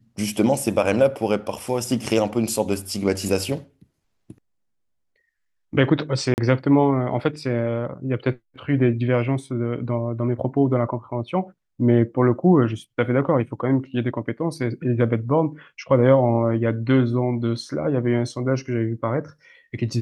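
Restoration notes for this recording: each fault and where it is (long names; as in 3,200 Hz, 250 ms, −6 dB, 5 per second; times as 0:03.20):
0:06.34–0:06.38: drop-out 39 ms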